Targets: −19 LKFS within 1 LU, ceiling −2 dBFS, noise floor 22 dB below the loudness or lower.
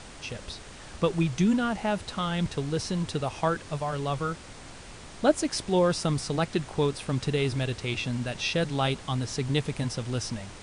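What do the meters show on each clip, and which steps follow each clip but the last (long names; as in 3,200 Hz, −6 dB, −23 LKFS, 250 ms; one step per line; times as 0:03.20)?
background noise floor −45 dBFS; target noise floor −51 dBFS; integrated loudness −28.5 LKFS; sample peak −9.0 dBFS; target loudness −19.0 LKFS
→ noise reduction from a noise print 6 dB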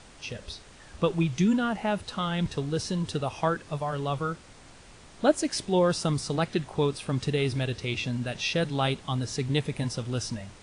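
background noise floor −51 dBFS; integrated loudness −28.5 LKFS; sample peak −8.5 dBFS; target loudness −19.0 LKFS
→ level +9.5 dB
brickwall limiter −2 dBFS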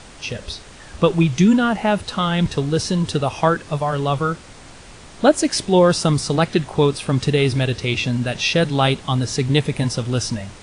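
integrated loudness −19.0 LKFS; sample peak −2.0 dBFS; background noise floor −41 dBFS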